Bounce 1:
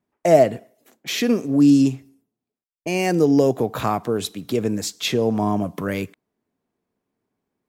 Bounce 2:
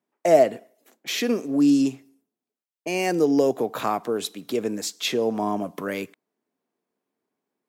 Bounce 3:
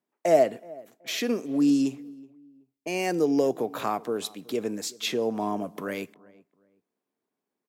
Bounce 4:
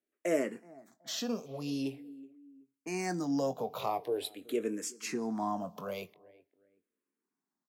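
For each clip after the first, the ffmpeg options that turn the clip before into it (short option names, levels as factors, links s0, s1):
-af "highpass=250,volume=0.794"
-filter_complex "[0:a]asplit=2[s0][s1];[s1]adelay=375,lowpass=f=1200:p=1,volume=0.0841,asplit=2[s2][s3];[s3]adelay=375,lowpass=f=1200:p=1,volume=0.3[s4];[s0][s2][s4]amix=inputs=3:normalize=0,volume=0.668"
-filter_complex "[0:a]asplit=2[s0][s1];[s1]adelay=22,volume=0.251[s2];[s0][s2]amix=inputs=2:normalize=0,asplit=2[s3][s4];[s4]afreqshift=-0.45[s5];[s3][s5]amix=inputs=2:normalize=1,volume=0.708"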